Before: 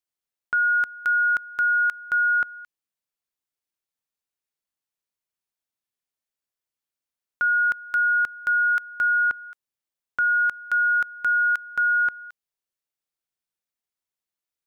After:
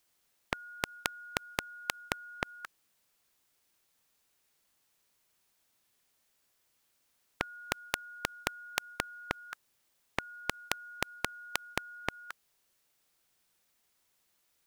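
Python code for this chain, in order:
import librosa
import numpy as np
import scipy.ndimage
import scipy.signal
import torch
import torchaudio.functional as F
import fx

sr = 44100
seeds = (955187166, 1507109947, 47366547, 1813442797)

y = fx.spectral_comp(x, sr, ratio=10.0)
y = F.gain(torch.from_numpy(y), 8.0).numpy()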